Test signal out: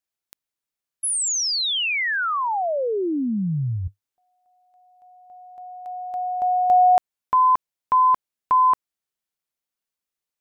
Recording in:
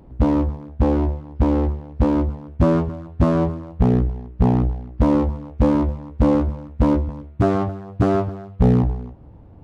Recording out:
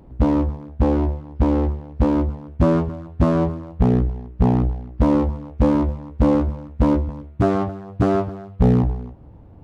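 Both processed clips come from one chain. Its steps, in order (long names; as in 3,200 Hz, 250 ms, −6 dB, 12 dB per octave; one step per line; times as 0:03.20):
dynamic equaliser 100 Hz, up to −4 dB, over −37 dBFS, Q 6.6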